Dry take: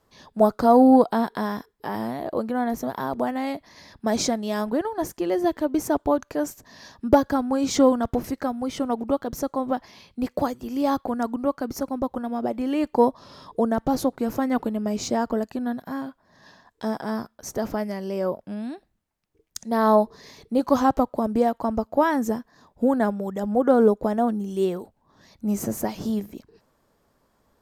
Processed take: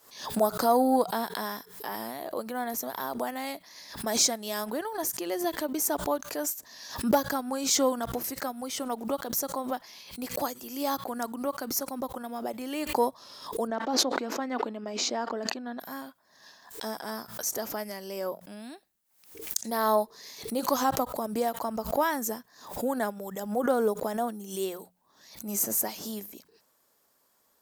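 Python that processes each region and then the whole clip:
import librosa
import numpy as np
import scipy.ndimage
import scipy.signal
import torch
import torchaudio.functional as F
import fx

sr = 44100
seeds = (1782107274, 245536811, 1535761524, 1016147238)

y = fx.chain(x, sr, fx.brickwall_highpass(low_hz=200.0),
    fx.air_absorb(metres=180.0),
    fx.sustainer(db_per_s=38.0), at=(13.67, 15.8))
y = fx.riaa(y, sr, side='recording')
y = fx.hum_notches(y, sr, base_hz=60, count=3)
y = fx.pre_swell(y, sr, db_per_s=100.0)
y = F.gain(torch.from_numpy(y), -5.0).numpy()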